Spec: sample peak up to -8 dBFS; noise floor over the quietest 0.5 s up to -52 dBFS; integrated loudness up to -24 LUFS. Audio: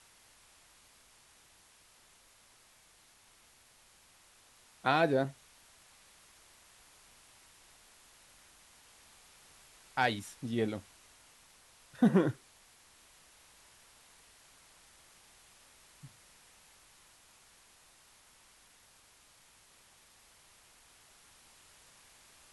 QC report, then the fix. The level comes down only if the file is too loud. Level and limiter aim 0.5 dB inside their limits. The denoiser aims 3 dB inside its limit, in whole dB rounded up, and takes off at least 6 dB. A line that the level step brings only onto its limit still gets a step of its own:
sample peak -14.0 dBFS: pass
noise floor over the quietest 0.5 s -63 dBFS: pass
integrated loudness -32.0 LUFS: pass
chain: none needed

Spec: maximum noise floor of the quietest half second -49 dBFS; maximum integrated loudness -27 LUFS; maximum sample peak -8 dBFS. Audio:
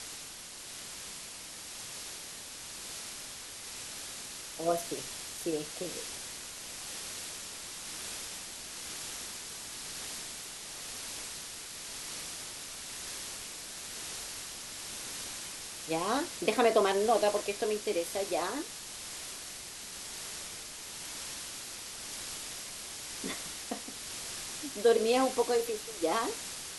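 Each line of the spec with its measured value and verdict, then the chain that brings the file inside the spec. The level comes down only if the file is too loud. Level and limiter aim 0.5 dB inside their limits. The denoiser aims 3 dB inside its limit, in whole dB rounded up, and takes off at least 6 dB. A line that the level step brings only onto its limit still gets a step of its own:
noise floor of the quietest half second -46 dBFS: fail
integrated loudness -35.5 LUFS: pass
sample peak -13.0 dBFS: pass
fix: noise reduction 6 dB, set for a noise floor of -46 dBFS

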